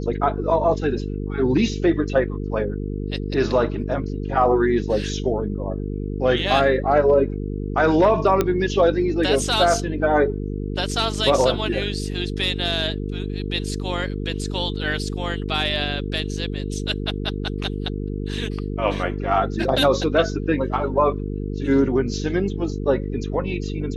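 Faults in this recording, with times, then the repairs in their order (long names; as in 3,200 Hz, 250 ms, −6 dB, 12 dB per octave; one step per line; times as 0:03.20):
mains buzz 50 Hz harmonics 9 −27 dBFS
0:08.41: click −6 dBFS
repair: click removal
hum removal 50 Hz, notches 9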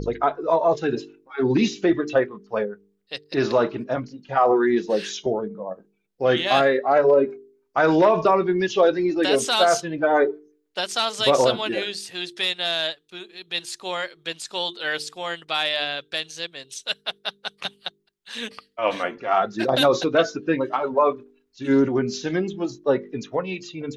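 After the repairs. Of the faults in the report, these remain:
none of them is left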